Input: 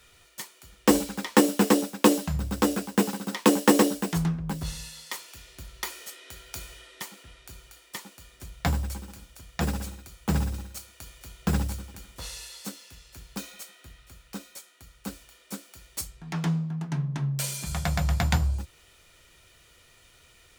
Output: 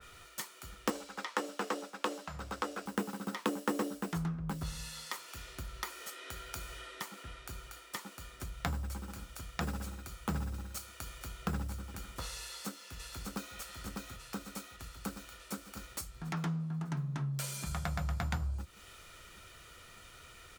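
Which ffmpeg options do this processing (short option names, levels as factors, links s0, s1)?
-filter_complex "[0:a]asettb=1/sr,asplit=3[s0][s1][s2];[s0]atrim=end=0.904[s3];[s1]atrim=start=0.9:end=2.86,asetpts=PTS-STARTPTS,afade=t=in:d=0.004:c=qsin,afade=t=out:st=1.956:d=0.004:c=qsin,acrossover=split=420 7900:gain=0.178 1 0.251[s4][s5][s6];[s4][s5][s6]amix=inputs=3:normalize=0[s7];[s2]atrim=start=2.856[s8];[s3][s7]acrossfade=d=0.004:c1=hsin:c2=qsin[s9];[s9][s8]acrossfade=d=0.004:c1=qsin:c2=hsin,asplit=2[s10][s11];[s11]afade=t=in:st=12.39:d=0.01,afade=t=out:st=13.56:d=0.01,aecho=0:1:600|1200|1800|2400|3000|3600|4200|4800|5400|6000|6600|7200:0.530884|0.371619|0.260133|0.182093|0.127465|0.0892257|0.062458|0.0437206|0.0306044|0.0214231|0.0149962|0.0104973[s12];[s10][s12]amix=inputs=2:normalize=0,equalizer=f=1300:t=o:w=0.33:g=7.5,acompressor=threshold=0.00794:ratio=2.5,adynamicequalizer=threshold=0.00112:dfrequency=2400:dqfactor=0.7:tfrequency=2400:tqfactor=0.7:attack=5:release=100:ratio=0.375:range=2:mode=cutabove:tftype=highshelf,volume=1.41"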